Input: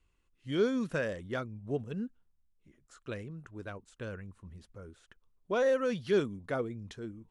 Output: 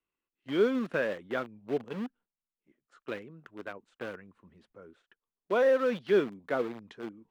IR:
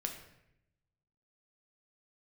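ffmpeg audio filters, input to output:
-filter_complex "[0:a]agate=range=-9dB:threshold=-59dB:ratio=16:detection=peak,asplit=2[a][b];[b]acrusher=bits=5:mix=0:aa=0.000001,volume=-6dB[c];[a][c]amix=inputs=2:normalize=0,acrossover=split=190 3700:gain=0.0891 1 0.141[d][e][f];[d][e][f]amix=inputs=3:normalize=0"

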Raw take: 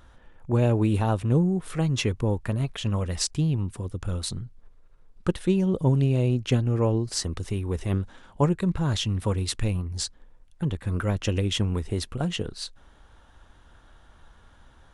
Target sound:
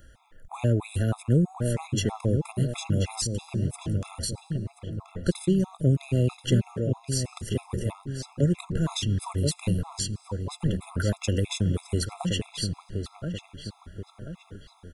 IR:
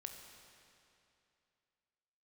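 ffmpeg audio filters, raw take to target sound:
-filter_complex "[0:a]asettb=1/sr,asplit=3[a][b][c];[a]atrim=end=6.704[d];[b]atrim=start=6.7:end=7.95,asetpts=PTS-STARTPTS,afade=t=in:d=0.004:c=qsin,afade=t=out:st=1.246:d=0.004:c=qsin,acompressor=threshold=-25dB:ratio=6[e];[c]atrim=start=7.946[f];[d][e]acrossfade=d=0.004:c1=hsin:c2=qsin[g];[g][f]acrossfade=d=0.004:c1=qsin:c2=hsin,asplit=2[h][i];[i]adelay=1031,lowpass=f=2.3k:p=1,volume=-6dB,asplit=2[j][k];[k]adelay=1031,lowpass=f=2.3k:p=1,volume=0.48,asplit=2[l][m];[m]adelay=1031,lowpass=f=2.3k:p=1,volume=0.48,asplit=2[n][o];[o]adelay=1031,lowpass=f=2.3k:p=1,volume=0.48,asplit=2[p][q];[q]adelay=1031,lowpass=f=2.3k:p=1,volume=0.48,asplit=2[r][s];[s]adelay=1031,lowpass=f=2.3k:p=1,volume=0.48[t];[h][j][l][n][p][r][t]amix=inputs=7:normalize=0,asplit=2[u][v];[1:a]atrim=start_sample=2205[w];[v][w]afir=irnorm=-1:irlink=0,volume=-14dB[x];[u][x]amix=inputs=2:normalize=0,crystalizer=i=1.5:c=0,acrossover=split=260[y][z];[z]acompressor=threshold=-24dB:ratio=6[aa];[y][aa]amix=inputs=2:normalize=0,afftfilt=real='re*gt(sin(2*PI*3.1*pts/sr)*(1-2*mod(floor(b*sr/1024/680),2)),0)':imag='im*gt(sin(2*PI*3.1*pts/sr)*(1-2*mod(floor(b*sr/1024/680),2)),0)':win_size=1024:overlap=0.75"

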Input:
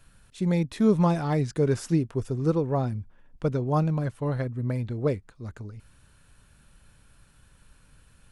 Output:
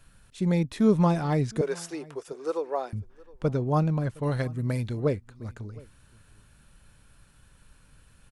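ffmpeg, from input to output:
-filter_complex "[0:a]asettb=1/sr,asplit=3[a][b][c];[a]atrim=end=1.614[d];[b]atrim=start=1.61:end=2.93,asetpts=PTS-STARTPTS,afade=t=in:d=0.004:c=qsin,afade=t=out:st=1.316:d=0.004:c=qsin,highpass=f=430:w=0.5412,highpass=f=430:w=1.3066[e];[c]atrim=start=2.926[f];[d][e]acrossfade=d=0.004:c1=hsin:c2=qsin[g];[g][f]acrossfade=d=0.004:c1=qsin:c2=hsin,asettb=1/sr,asplit=3[h][i][j];[h]atrim=end=4.234[k];[i]atrim=start=4.23:end=5,asetpts=PTS-STARTPTS,afade=t=in:d=0.004:c=qsin,afade=t=out:st=0.766:d=0.004:c=qsin,highshelf=f=2.8k:g=12[l];[j]atrim=start=4.996[m];[k][l]acrossfade=d=0.004:c1=hsin:c2=qsin[n];[n][m]acrossfade=d=0.004:c1=qsin:c2=hsin,aecho=1:1:714:0.0668"

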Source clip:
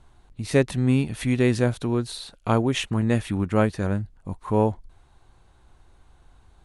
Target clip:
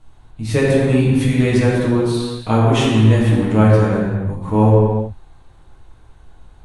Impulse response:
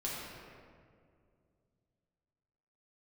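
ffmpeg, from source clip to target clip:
-filter_complex "[1:a]atrim=start_sample=2205,afade=t=out:st=0.36:d=0.01,atrim=end_sample=16317,asetrate=33957,aresample=44100[a];[0:a][a]afir=irnorm=-1:irlink=0,volume=2.5dB"

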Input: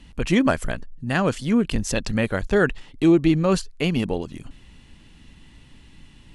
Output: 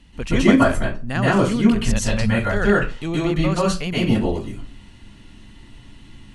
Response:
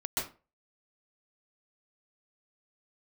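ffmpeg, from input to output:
-filter_complex "[0:a]asettb=1/sr,asplit=3[a][b][c];[a]atrim=end=1.564[d];[b]atrim=start=1.56:end=3.87,asetpts=PTS-STARTPTS,afade=t=in:d=0.004:c=qsin,afade=t=out:st=2.306:d=0.004:c=qsin,equalizer=f=320:w=1.8:g=-10[e];[c]atrim=start=3.866[f];[d][e]acrossfade=d=0.004:c1=hsin:c2=qsin[g];[g][f]acrossfade=d=0.004:c1=qsin:c2=hsin[h];[1:a]atrim=start_sample=2205[i];[h][i]afir=irnorm=-1:irlink=0,volume=-1dB"

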